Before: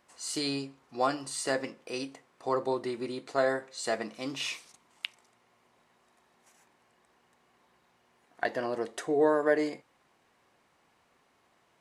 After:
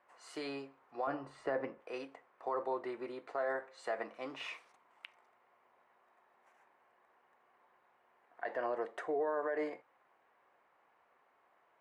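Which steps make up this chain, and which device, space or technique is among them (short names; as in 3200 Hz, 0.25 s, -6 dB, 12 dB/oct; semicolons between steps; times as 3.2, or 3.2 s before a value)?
DJ mixer with the lows and highs turned down (three-band isolator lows -17 dB, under 430 Hz, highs -22 dB, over 2200 Hz; limiter -27 dBFS, peak gain reduction 11 dB); 1.07–1.8 RIAA curve playback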